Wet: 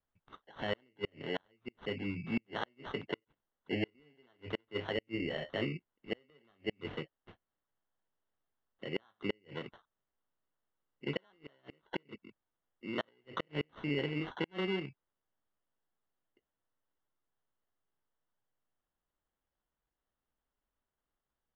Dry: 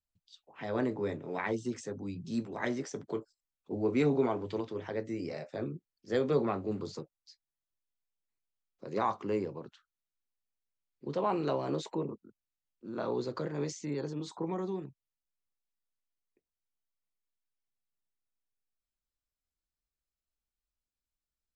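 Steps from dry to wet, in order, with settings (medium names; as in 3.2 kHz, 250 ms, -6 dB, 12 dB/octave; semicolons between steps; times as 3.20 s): sample-and-hold 18×; inverted gate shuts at -25 dBFS, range -39 dB; four-pole ladder low-pass 3.2 kHz, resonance 50%; trim +10.5 dB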